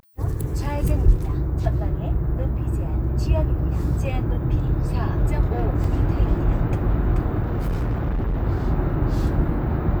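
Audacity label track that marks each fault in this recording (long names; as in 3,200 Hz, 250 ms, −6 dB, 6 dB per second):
5.840000	5.840000	drop-out 2.2 ms
7.420000	8.440000	clipping −19.5 dBFS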